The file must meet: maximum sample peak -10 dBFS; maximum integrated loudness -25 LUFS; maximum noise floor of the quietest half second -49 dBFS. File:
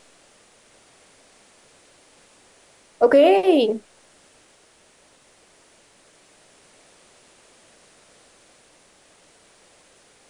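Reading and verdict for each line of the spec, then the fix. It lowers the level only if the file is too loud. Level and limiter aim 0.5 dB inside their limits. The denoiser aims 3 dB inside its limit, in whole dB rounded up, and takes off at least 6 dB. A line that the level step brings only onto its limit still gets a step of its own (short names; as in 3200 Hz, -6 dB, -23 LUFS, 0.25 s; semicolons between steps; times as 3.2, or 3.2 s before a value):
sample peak -5.5 dBFS: fail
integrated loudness -17.0 LUFS: fail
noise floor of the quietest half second -56 dBFS: OK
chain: gain -8.5 dB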